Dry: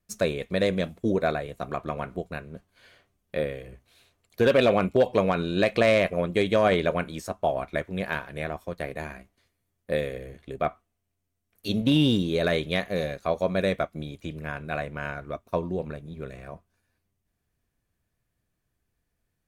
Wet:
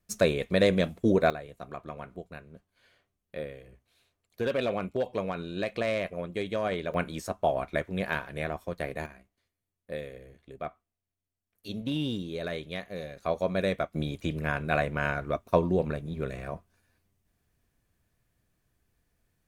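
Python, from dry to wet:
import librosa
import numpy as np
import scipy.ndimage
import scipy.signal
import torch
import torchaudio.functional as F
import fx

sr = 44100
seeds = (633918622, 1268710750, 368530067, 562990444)

y = fx.gain(x, sr, db=fx.steps((0.0, 1.5), (1.3, -9.0), (6.94, -1.0), (9.06, -10.0), (13.17, -3.0), (13.94, 4.0)))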